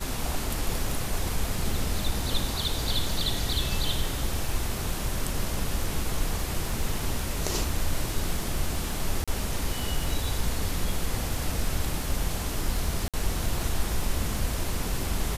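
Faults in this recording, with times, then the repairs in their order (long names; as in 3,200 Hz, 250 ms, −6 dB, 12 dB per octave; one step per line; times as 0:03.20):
surface crackle 23 per second −32 dBFS
0:09.24–0:09.28: drop-out 36 ms
0:13.08–0:13.14: drop-out 56 ms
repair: click removal
repair the gap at 0:09.24, 36 ms
repair the gap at 0:13.08, 56 ms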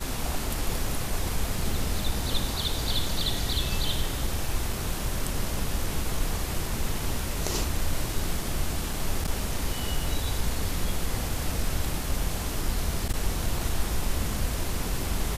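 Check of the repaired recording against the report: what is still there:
none of them is left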